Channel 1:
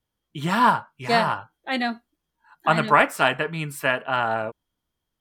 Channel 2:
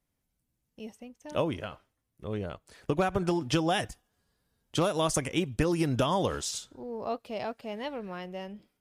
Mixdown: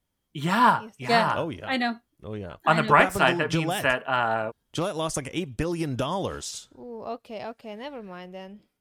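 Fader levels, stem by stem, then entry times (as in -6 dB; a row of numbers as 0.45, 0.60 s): -1.0, -1.0 dB; 0.00, 0.00 s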